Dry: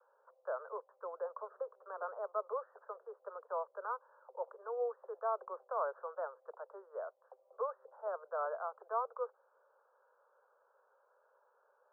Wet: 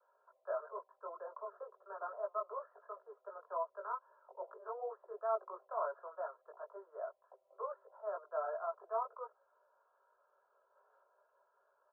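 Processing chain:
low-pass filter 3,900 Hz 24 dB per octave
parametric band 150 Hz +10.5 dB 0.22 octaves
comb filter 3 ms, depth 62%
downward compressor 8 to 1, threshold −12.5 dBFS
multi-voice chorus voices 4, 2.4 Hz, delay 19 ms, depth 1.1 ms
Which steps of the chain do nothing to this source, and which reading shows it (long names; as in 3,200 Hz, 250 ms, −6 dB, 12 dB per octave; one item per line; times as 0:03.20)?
low-pass filter 3,900 Hz: nothing at its input above 1,600 Hz
parametric band 150 Hz: nothing at its input below 360 Hz
downward compressor, threshold −12.5 dBFS: peak of its input −21.5 dBFS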